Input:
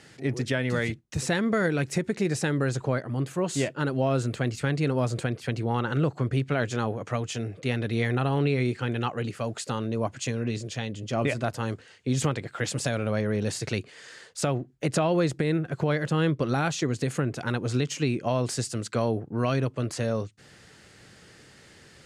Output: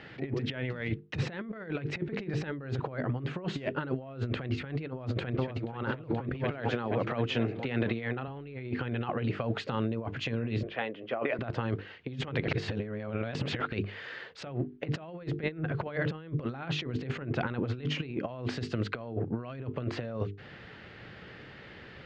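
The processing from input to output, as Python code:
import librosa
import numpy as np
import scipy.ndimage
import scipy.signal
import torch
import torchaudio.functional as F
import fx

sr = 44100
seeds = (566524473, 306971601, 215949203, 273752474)

y = fx.echo_throw(x, sr, start_s=4.9, length_s=0.82, ms=480, feedback_pct=60, wet_db=-3.5)
y = fx.highpass(y, sr, hz=140.0, slope=12, at=(6.34, 8.28))
y = fx.bandpass_edges(y, sr, low_hz=450.0, high_hz=2100.0, at=(10.63, 11.39))
y = fx.edit(y, sr, fx.reverse_span(start_s=12.48, length_s=1.24), tone=tone)
y = scipy.signal.sosfilt(scipy.signal.butter(4, 3300.0, 'lowpass', fs=sr, output='sos'), y)
y = fx.hum_notches(y, sr, base_hz=50, count=9)
y = fx.over_compress(y, sr, threshold_db=-32.0, ratio=-0.5)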